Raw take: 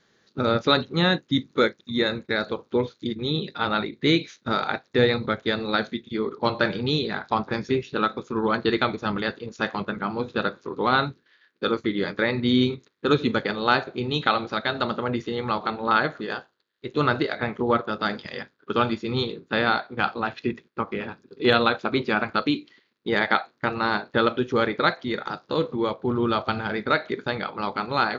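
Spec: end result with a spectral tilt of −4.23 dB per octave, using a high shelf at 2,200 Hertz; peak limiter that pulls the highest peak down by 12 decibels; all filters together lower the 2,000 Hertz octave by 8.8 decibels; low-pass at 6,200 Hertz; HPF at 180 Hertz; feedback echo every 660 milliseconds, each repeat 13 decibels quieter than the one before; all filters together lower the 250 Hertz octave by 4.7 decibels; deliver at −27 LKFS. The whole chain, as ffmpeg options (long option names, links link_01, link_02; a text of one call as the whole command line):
ffmpeg -i in.wav -af "highpass=180,lowpass=6200,equalizer=frequency=250:width_type=o:gain=-4.5,equalizer=frequency=2000:width_type=o:gain=-9,highshelf=frequency=2200:gain=-7.5,alimiter=limit=-21dB:level=0:latency=1,aecho=1:1:660|1320|1980:0.224|0.0493|0.0108,volume=6.5dB" out.wav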